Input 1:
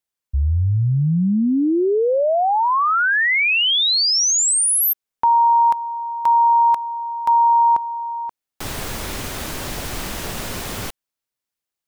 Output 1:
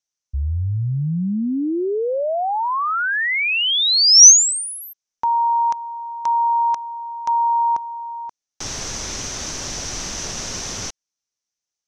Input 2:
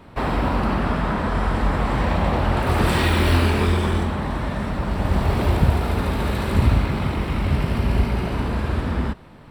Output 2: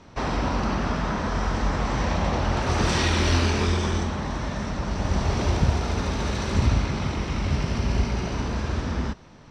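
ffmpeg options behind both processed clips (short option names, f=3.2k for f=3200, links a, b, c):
-af "lowpass=f=6k:t=q:w=7.2,volume=-4dB"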